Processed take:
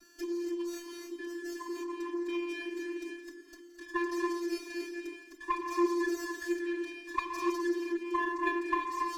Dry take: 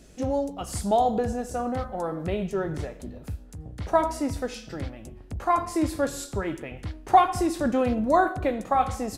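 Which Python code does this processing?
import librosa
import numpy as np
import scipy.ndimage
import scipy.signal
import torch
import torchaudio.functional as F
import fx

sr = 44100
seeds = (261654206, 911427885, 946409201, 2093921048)

y = scipy.signal.sosfilt(scipy.signal.cheby1(3, 1.0, [240.0, 1200.0], 'bandstop', fs=sr, output='sos'), x)
y = fx.peak_eq(y, sr, hz=4900.0, db=15.0, octaves=0.69)
y = fx.rider(y, sr, range_db=4, speed_s=0.5)
y = fx.env_phaser(y, sr, low_hz=600.0, high_hz=3600.0, full_db=-8.0)
y = fx.vocoder(y, sr, bands=16, carrier='square', carrier_hz=345.0)
y = fx.env_flanger(y, sr, rest_ms=3.6, full_db=-8.0)
y = y + 10.0 ** (-22.5 / 20.0) * np.pad(y, (int(417 * sr / 1000.0), 0))[:len(y)]
y = fx.rev_gated(y, sr, seeds[0], gate_ms=320, shape='rising', drr_db=2.0)
y = fx.running_max(y, sr, window=3)
y = y * librosa.db_to_amplitude(1.5)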